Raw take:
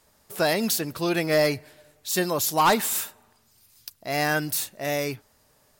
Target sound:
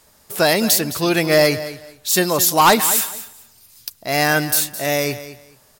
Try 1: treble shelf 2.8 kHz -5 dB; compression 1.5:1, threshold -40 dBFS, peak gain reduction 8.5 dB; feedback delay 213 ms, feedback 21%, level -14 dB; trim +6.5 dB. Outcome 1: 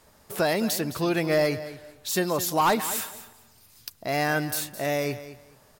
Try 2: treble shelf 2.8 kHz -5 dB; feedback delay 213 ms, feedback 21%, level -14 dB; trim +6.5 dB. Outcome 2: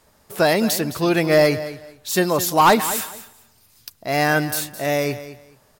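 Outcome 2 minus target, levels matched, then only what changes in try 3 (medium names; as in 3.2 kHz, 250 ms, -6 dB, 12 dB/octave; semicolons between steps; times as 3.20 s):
4 kHz band -3.0 dB
change: treble shelf 2.8 kHz +3.5 dB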